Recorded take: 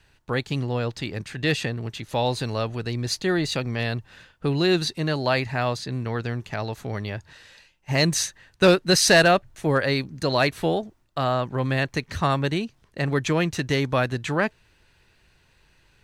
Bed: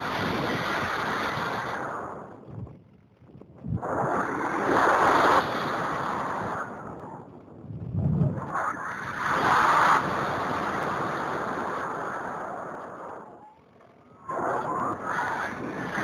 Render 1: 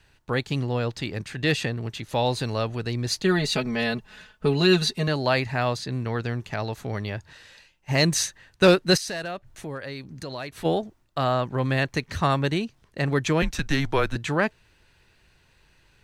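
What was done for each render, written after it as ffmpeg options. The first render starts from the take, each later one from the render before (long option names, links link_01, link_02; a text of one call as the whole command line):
ffmpeg -i in.wav -filter_complex "[0:a]asettb=1/sr,asplit=3[link_01][link_02][link_03];[link_01]atrim=end=3.244[link_04];[link_02]atrim=start=3.24:end=5.08,asetpts=PTS-STARTPTS,afade=type=in:duration=0.004:curve=qsin,afade=type=out:start_time=1.836:duration=0.004:curve=qsin,aecho=1:1:4.7:0.8,atrim=end_sample=81144[link_05];[link_03]atrim=start=5.076[link_06];[link_04][link_05]acrossfade=duration=0.004:curve1=hsin:curve2=qsin[link_07];[link_07][link_06]acrossfade=duration=0.004:curve1=qsin:curve2=hsin,asplit=3[link_08][link_09][link_10];[link_08]afade=type=out:start_time=8.96:duration=0.02[link_11];[link_09]acompressor=threshold=-37dB:ratio=2.5:attack=3.2:release=140:knee=1:detection=peak,afade=type=in:start_time=8.96:duration=0.02,afade=type=out:start_time=10.64:duration=0.02[link_12];[link_10]afade=type=in:start_time=10.64:duration=0.02[link_13];[link_11][link_12][link_13]amix=inputs=3:normalize=0,asettb=1/sr,asplit=3[link_14][link_15][link_16];[link_14]atrim=end=13.424[link_17];[link_15]atrim=start=13.42:end=14.16,asetpts=PTS-STARTPTS,afade=type=in:duration=0.004:curve=qsin,afade=type=out:start_time=0.736:duration=0.004:curve=qsin,afreqshift=-140[link_18];[link_16]atrim=start=14.156[link_19];[link_17][link_18]acrossfade=duration=0.004:curve1=hsin:curve2=qsin[link_20];[link_20][link_19]acrossfade=duration=0.004:curve1=qsin:curve2=hsin" out.wav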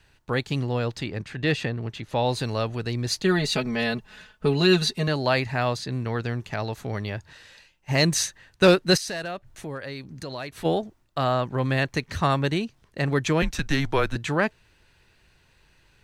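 ffmpeg -i in.wav -filter_complex "[0:a]asettb=1/sr,asplit=3[link_01][link_02][link_03];[link_01]atrim=end=1.034[link_04];[link_02]atrim=start=1.03:end=2.29,asetpts=PTS-STARTPTS,afade=type=in:duration=0.004:curve=qsin,afade=type=out:start_time=1.256:duration=0.004:curve=qsin,highshelf=frequency=5500:gain=-11[link_05];[link_03]atrim=start=2.286[link_06];[link_04][link_05]acrossfade=duration=0.004:curve1=hsin:curve2=qsin[link_07];[link_07][link_06]acrossfade=duration=0.004:curve1=qsin:curve2=hsin" out.wav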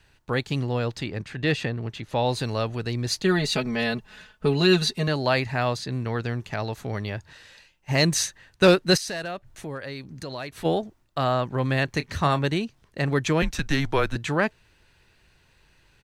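ffmpeg -i in.wav -filter_complex "[0:a]asplit=3[link_01][link_02][link_03];[link_01]afade=type=out:start_time=11.87:duration=0.02[link_04];[link_02]asplit=2[link_05][link_06];[link_06]adelay=27,volume=-13dB[link_07];[link_05][link_07]amix=inputs=2:normalize=0,afade=type=in:start_time=11.87:duration=0.02,afade=type=out:start_time=12.43:duration=0.02[link_08];[link_03]afade=type=in:start_time=12.43:duration=0.02[link_09];[link_04][link_08][link_09]amix=inputs=3:normalize=0" out.wav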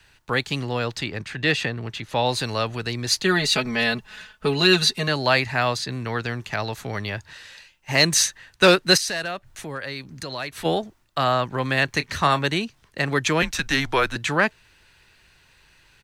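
ffmpeg -i in.wav -filter_complex "[0:a]acrossover=split=180|930[link_01][link_02][link_03];[link_01]alimiter=level_in=5.5dB:limit=-24dB:level=0:latency=1,volume=-5.5dB[link_04];[link_03]acontrast=64[link_05];[link_04][link_02][link_05]amix=inputs=3:normalize=0" out.wav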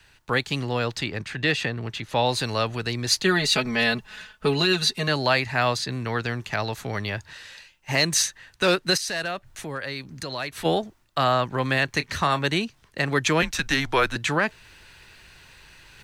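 ffmpeg -i in.wav -af "alimiter=limit=-9.5dB:level=0:latency=1:release=289,areverse,acompressor=mode=upward:threshold=-41dB:ratio=2.5,areverse" out.wav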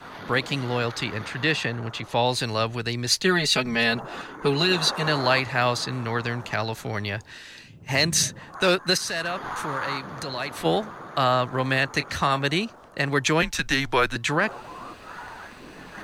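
ffmpeg -i in.wav -i bed.wav -filter_complex "[1:a]volume=-11dB[link_01];[0:a][link_01]amix=inputs=2:normalize=0" out.wav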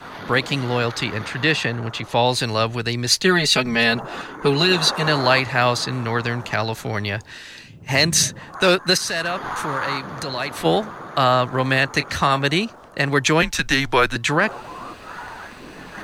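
ffmpeg -i in.wav -af "volume=4.5dB" out.wav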